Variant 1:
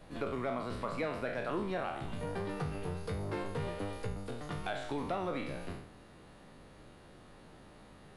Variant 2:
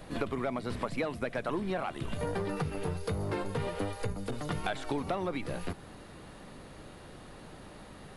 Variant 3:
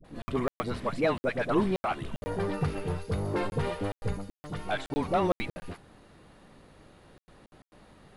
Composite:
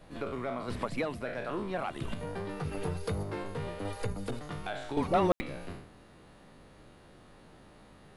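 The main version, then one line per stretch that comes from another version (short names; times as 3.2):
1
0.68–1.21 from 2
1.74–2.14 from 2
2.64–3.23 from 2
3.85–4.39 from 2
4.97–5.41 from 3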